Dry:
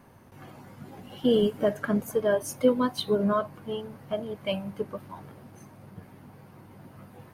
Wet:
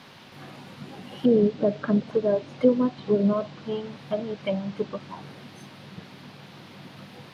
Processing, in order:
treble cut that deepens with the level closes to 700 Hz, closed at −23.5 dBFS
noise in a band 350–4,300 Hz −54 dBFS
low shelf with overshoot 110 Hz −8 dB, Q 1.5
level +2.5 dB

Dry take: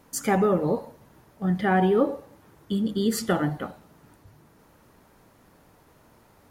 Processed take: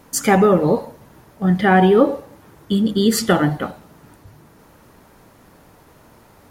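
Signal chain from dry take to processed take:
dynamic equaliser 3,400 Hz, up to +3 dB, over −42 dBFS, Q 0.74
level +8 dB

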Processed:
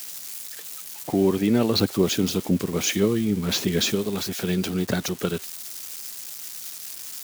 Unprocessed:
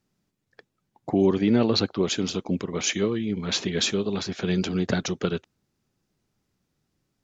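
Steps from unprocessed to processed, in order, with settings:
spike at every zero crossing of −25.5 dBFS
0:01.75–0:03.95: low-shelf EQ 460 Hz +5.5 dB

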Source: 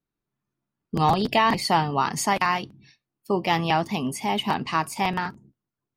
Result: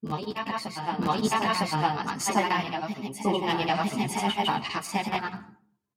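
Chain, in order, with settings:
high-pass filter 87 Hz
in parallel at +1.5 dB: downward compressor, threshold −30 dBFS, peak gain reduction 14 dB
on the sum: granular cloud, pitch spread up and down by 0 semitones
backwards echo 956 ms −6 dB
on a send at −14.5 dB: convolution reverb RT60 0.50 s, pre-delay 70 ms
on the sum: string-ensemble chorus
level −1.5 dB

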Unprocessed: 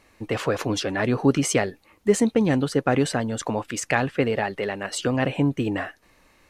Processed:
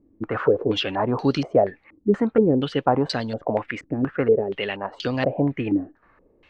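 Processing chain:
low-pass on a step sequencer 4.2 Hz 300–4,400 Hz
level −2 dB

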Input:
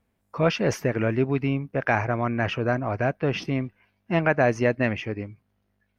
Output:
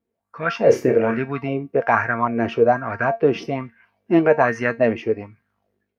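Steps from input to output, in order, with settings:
high-pass filter 59 Hz
tuned comb filter 230 Hz, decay 0.22 s, harmonics all, mix 70%
0:00.63–0:01.19: flutter between parallel walls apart 5.3 metres, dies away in 0.27 s
automatic gain control gain up to 11 dB
auto-filter bell 1.2 Hz 330–1,700 Hz +18 dB
level −5 dB

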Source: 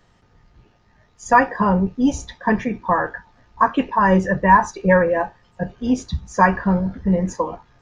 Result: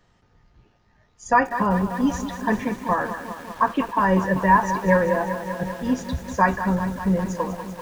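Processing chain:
feedback echo at a low word length 195 ms, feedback 80%, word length 6 bits, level −10.5 dB
level −4 dB

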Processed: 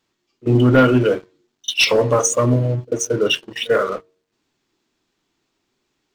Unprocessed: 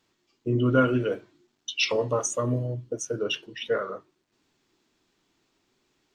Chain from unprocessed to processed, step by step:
hum removal 92.29 Hz, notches 7
leveller curve on the samples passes 2
echo ahead of the sound 43 ms −24 dB
level +3.5 dB

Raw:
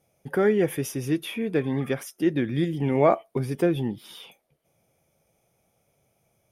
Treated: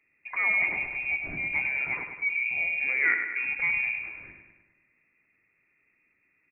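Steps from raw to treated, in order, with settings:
0:02.05–0:02.51: spectral envelope exaggerated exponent 3
in parallel at −0.5 dB: downward compressor, threshold −31 dBFS, peak gain reduction 16 dB
on the sum: transient designer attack −3 dB, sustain +6 dB
repeating echo 102 ms, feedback 57%, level −7 dB
voice inversion scrambler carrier 2,600 Hz
level −7 dB

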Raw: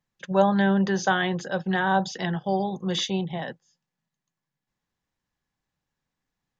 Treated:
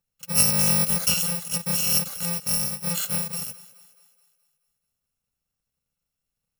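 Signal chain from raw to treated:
samples in bit-reversed order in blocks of 128 samples
on a send: feedback echo with a high-pass in the loop 213 ms, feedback 51%, high-pass 220 Hz, level −18.5 dB
0:00.69–0:01.17: on the sum: multiband upward and downward compressor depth 70%

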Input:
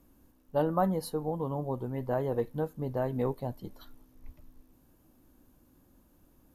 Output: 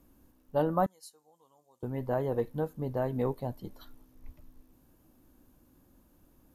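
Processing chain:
0:00.86–0:01.83: resonant band-pass 7,100 Hz, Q 2.3

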